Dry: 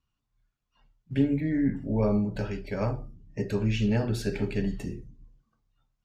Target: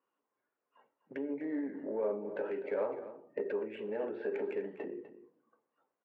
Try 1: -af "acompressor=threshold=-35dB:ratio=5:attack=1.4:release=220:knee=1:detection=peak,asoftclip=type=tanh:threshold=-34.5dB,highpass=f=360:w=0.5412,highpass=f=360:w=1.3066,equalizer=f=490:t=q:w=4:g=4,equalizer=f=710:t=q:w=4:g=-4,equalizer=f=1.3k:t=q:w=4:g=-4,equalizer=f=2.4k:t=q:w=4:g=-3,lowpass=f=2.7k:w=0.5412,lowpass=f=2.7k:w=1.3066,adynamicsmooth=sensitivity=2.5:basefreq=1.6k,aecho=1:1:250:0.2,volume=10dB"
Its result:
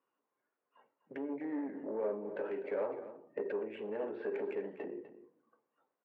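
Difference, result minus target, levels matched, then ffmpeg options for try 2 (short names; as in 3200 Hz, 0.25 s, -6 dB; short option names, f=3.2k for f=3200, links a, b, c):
soft clip: distortion +12 dB
-af "acompressor=threshold=-35dB:ratio=5:attack=1.4:release=220:knee=1:detection=peak,asoftclip=type=tanh:threshold=-27dB,highpass=f=360:w=0.5412,highpass=f=360:w=1.3066,equalizer=f=490:t=q:w=4:g=4,equalizer=f=710:t=q:w=4:g=-4,equalizer=f=1.3k:t=q:w=4:g=-4,equalizer=f=2.4k:t=q:w=4:g=-3,lowpass=f=2.7k:w=0.5412,lowpass=f=2.7k:w=1.3066,adynamicsmooth=sensitivity=2.5:basefreq=1.6k,aecho=1:1:250:0.2,volume=10dB"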